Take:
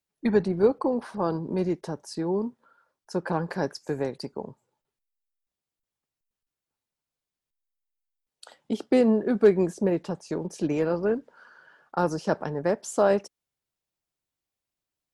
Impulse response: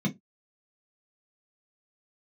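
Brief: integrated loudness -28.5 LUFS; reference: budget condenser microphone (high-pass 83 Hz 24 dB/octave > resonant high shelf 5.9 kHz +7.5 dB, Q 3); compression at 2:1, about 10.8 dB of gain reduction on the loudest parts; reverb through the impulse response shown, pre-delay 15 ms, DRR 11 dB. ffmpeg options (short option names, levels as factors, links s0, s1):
-filter_complex "[0:a]acompressor=threshold=0.0224:ratio=2,asplit=2[s0][s1];[1:a]atrim=start_sample=2205,adelay=15[s2];[s1][s2]afir=irnorm=-1:irlink=0,volume=0.158[s3];[s0][s3]amix=inputs=2:normalize=0,highpass=f=83:w=0.5412,highpass=f=83:w=1.3066,highshelf=f=5900:t=q:w=3:g=7.5,volume=0.944"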